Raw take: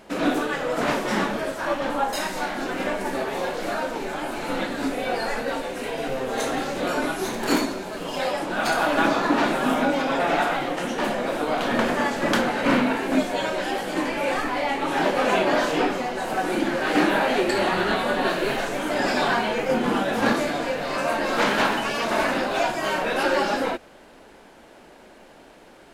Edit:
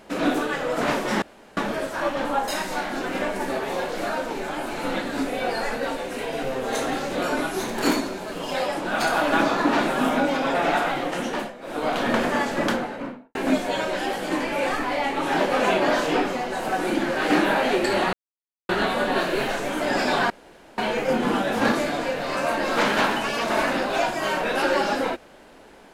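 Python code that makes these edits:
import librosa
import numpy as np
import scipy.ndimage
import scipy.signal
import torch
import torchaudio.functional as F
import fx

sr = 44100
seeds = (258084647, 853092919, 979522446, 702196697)

y = fx.studio_fade_out(x, sr, start_s=12.12, length_s=0.88)
y = fx.edit(y, sr, fx.insert_room_tone(at_s=1.22, length_s=0.35),
    fx.fade_down_up(start_s=10.94, length_s=0.57, db=-15.5, fade_s=0.25),
    fx.insert_silence(at_s=17.78, length_s=0.56),
    fx.insert_room_tone(at_s=19.39, length_s=0.48), tone=tone)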